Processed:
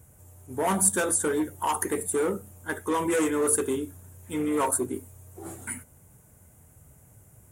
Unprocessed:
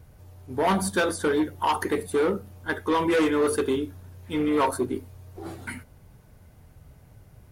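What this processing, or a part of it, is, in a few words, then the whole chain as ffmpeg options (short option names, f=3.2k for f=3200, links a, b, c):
budget condenser microphone: -af "highpass=65,highshelf=f=6k:t=q:w=3:g=10,volume=-3dB"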